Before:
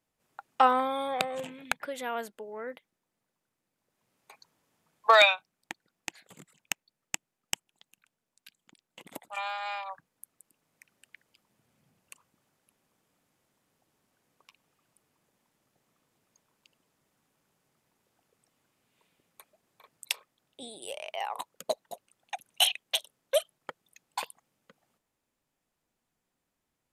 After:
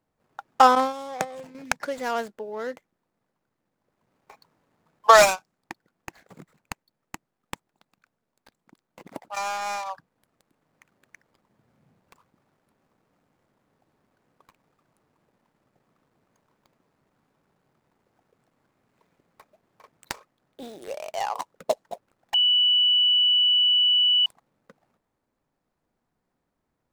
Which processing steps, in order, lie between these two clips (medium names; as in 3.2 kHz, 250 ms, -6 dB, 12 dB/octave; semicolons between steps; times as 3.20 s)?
median filter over 15 samples; dynamic bell 7.2 kHz, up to +7 dB, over -58 dBFS, Q 0.92; 0.75–1.55 s: gate -29 dBFS, range -10 dB; 22.34–24.26 s: bleep 2.96 kHz -23.5 dBFS; trim +7 dB